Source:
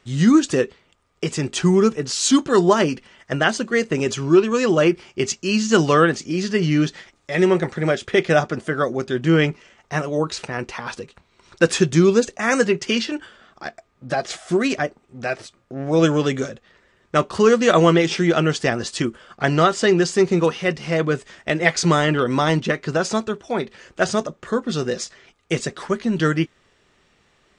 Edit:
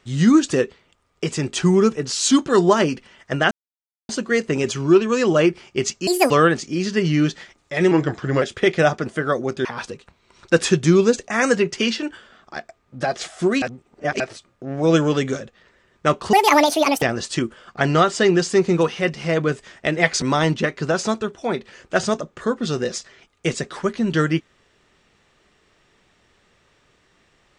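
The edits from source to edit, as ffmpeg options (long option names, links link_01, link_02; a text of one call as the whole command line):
ffmpeg -i in.wav -filter_complex "[0:a]asplit=12[link_01][link_02][link_03][link_04][link_05][link_06][link_07][link_08][link_09][link_10][link_11][link_12];[link_01]atrim=end=3.51,asetpts=PTS-STARTPTS,afade=type=out:start_time=3.506:duration=0.004:curve=hsin,apad=pad_dur=0.58[link_13];[link_02]atrim=start=3.51:end=5.494,asetpts=PTS-STARTPTS,afade=type=in:duration=0.004:curve=hsin[link_14];[link_03]atrim=start=5.49:end=5.88,asetpts=PTS-STARTPTS,asetrate=73647,aresample=44100[link_15];[link_04]atrim=start=5.876:end=7.494[link_16];[link_05]atrim=start=7.49:end=7.93,asetpts=PTS-STARTPTS,asetrate=38367,aresample=44100,atrim=end_sample=22303,asetpts=PTS-STARTPTS[link_17];[link_06]atrim=start=7.926:end=9.162[link_18];[link_07]atrim=start=10.738:end=14.712[link_19];[link_08]atrim=start=14.708:end=15.292,asetpts=PTS-STARTPTS,areverse[link_20];[link_09]atrim=start=15.288:end=17.424[link_21];[link_10]atrim=start=17.42:end=18.65,asetpts=PTS-STARTPTS,asetrate=78498,aresample=44100[link_22];[link_11]atrim=start=18.646:end=21.852[link_23];[link_12]atrim=start=22.278[link_24];[link_13][link_14]concat=n=2:v=0:a=1[link_25];[link_25][link_15]acrossfade=duration=0.004:curve1=hsin:curve2=hsin[link_26];[link_26][link_16]acrossfade=duration=0.004:curve1=hsin:curve2=hsin[link_27];[link_27][link_17]acrossfade=duration=0.004:curve1=hsin:curve2=hsin[link_28];[link_28][link_18]acrossfade=duration=0.004:curve1=hsin:curve2=hsin[link_29];[link_29][link_19]acrossfade=duration=0.004:curve1=hsin:curve2=hsin[link_30];[link_30][link_20]acrossfade=duration=0.004:curve1=hsin:curve2=hsin[link_31];[link_31][link_21]acrossfade=duration=0.004:curve1=hsin:curve2=hsin[link_32];[link_32][link_22]acrossfade=duration=0.004:curve1=hsin:curve2=hsin[link_33];[link_33][link_23]acrossfade=duration=0.004:curve1=hsin:curve2=hsin[link_34];[link_34][link_24]acrossfade=duration=0.004:curve1=hsin:curve2=hsin" out.wav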